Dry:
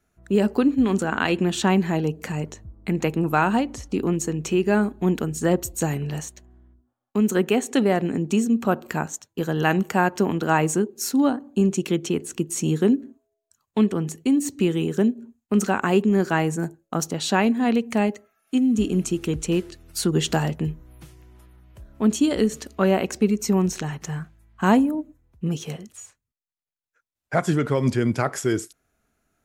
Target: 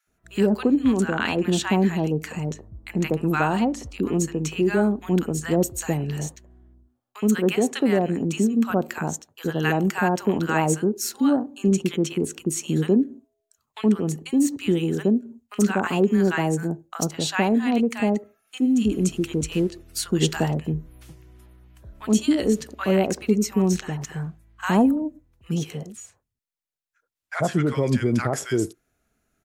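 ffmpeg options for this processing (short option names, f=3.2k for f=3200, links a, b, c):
-filter_complex "[0:a]acrossover=split=1000[a][b];[a]adelay=70[c];[c][b]amix=inputs=2:normalize=0"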